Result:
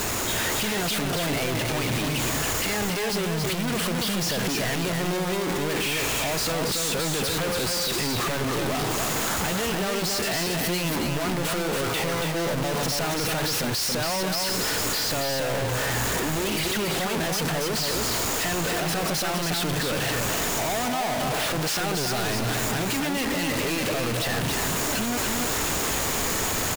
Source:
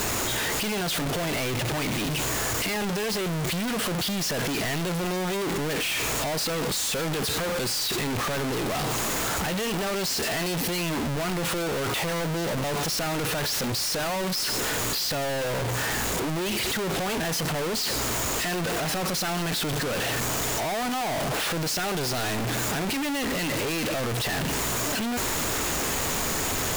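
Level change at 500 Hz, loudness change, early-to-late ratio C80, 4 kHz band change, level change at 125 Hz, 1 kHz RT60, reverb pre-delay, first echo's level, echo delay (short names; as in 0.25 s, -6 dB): +1.5 dB, +1.5 dB, none, +1.5 dB, +1.5 dB, none, none, -4.0 dB, 0.28 s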